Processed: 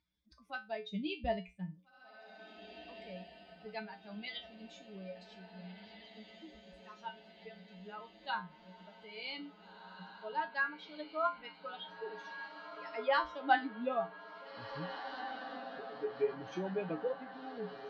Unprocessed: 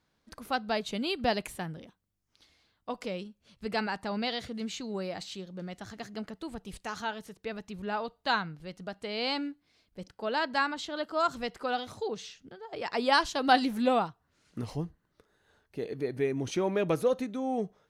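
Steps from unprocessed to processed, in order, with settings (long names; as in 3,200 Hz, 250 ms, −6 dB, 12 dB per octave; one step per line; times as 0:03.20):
spectral dynamics exaggerated over time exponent 2
low-pass filter 4,700 Hz 24 dB per octave
low-shelf EQ 150 Hz −10.5 dB
feedback delay with all-pass diffusion 1,811 ms, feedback 61%, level −10.5 dB
treble cut that deepens with the level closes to 2,600 Hz, closed at −33 dBFS
0:00.85–0:01.80: low-shelf EQ 310 Hz +11.5 dB
tuned comb filter 61 Hz, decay 0.23 s, harmonics odd, mix 90%
upward compression, threshold −58 dBFS
level +6 dB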